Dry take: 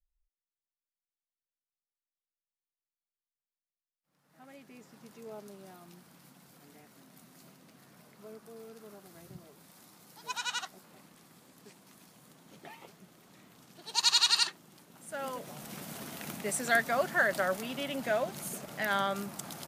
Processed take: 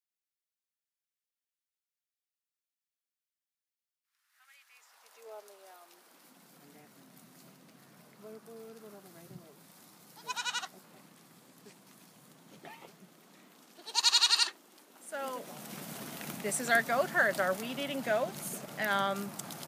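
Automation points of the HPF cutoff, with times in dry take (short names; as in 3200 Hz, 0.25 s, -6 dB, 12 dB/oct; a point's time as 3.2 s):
HPF 24 dB/oct
4.52 s 1400 Hz
5.28 s 470 Hz
5.83 s 470 Hz
6.78 s 110 Hz
12.69 s 110 Hz
13.91 s 260 Hz
15.14 s 260 Hz
16.02 s 97 Hz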